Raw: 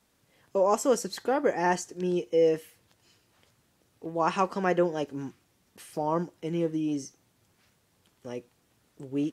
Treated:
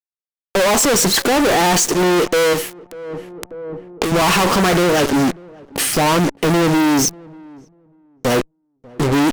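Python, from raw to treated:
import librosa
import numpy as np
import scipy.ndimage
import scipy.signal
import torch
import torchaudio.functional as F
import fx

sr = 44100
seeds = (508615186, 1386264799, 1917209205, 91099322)

p1 = fx.noise_reduce_blind(x, sr, reduce_db=18)
p2 = fx.cheby_harmonics(p1, sr, harmonics=(4, 5), levels_db=(-12, -12), full_scale_db=-11.5)
p3 = fx.fuzz(p2, sr, gain_db=50.0, gate_db=-44.0)
p4 = p3 + fx.echo_filtered(p3, sr, ms=592, feedback_pct=21, hz=800.0, wet_db=-23, dry=0)
y = fx.band_squash(p4, sr, depth_pct=100, at=(2.53, 4.12))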